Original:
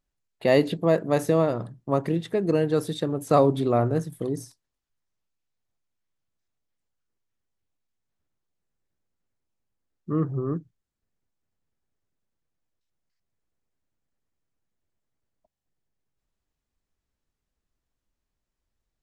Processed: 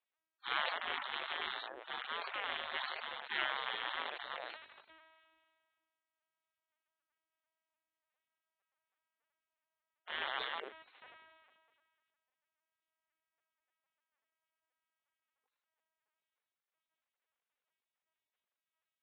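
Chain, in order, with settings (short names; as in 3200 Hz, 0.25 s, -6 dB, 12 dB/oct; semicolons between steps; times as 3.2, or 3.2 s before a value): rattling part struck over -34 dBFS, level -19 dBFS; LPC vocoder at 8 kHz pitch kept; spectral gate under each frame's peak -30 dB weak; three-band isolator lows -22 dB, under 380 Hz, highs -12 dB, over 2800 Hz; sustainer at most 31 dB/s; gain +7 dB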